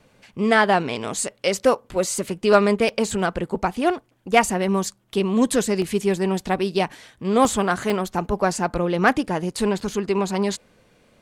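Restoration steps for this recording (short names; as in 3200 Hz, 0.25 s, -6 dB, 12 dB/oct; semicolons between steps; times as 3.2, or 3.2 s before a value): interpolate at 2.89/5.82/7.45/7.9/9.9, 1.7 ms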